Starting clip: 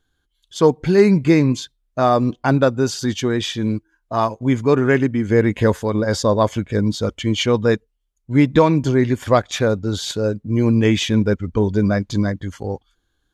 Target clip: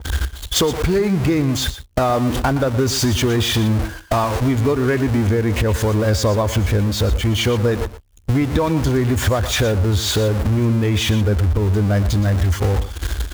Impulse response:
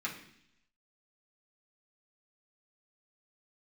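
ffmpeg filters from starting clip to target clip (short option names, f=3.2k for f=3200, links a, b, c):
-filter_complex "[0:a]aeval=exprs='val(0)+0.5*0.112*sgn(val(0))':c=same,highpass=f=47:w=0.5412,highpass=f=47:w=1.3066,agate=range=-53dB:threshold=-23dB:ratio=16:detection=peak,lowshelf=f=100:t=q:w=1.5:g=13.5,acompressor=mode=upward:threshold=-15dB:ratio=2.5,alimiter=limit=-6dB:level=0:latency=1:release=192,acompressor=threshold=-19dB:ratio=6,asplit=2[a][b];[b]aecho=0:1:119:0.211[c];[a][c]amix=inputs=2:normalize=0,adynamicequalizer=threshold=0.0112:dfrequency=1800:dqfactor=0.7:tfrequency=1800:tqfactor=0.7:attack=5:release=100:ratio=0.375:range=1.5:mode=cutabove:tftype=highshelf,volume=4.5dB"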